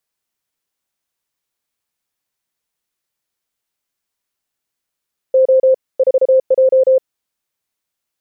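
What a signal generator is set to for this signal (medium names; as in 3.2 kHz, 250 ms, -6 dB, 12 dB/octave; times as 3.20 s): Morse "O 4J" 33 wpm 523 Hz -7 dBFS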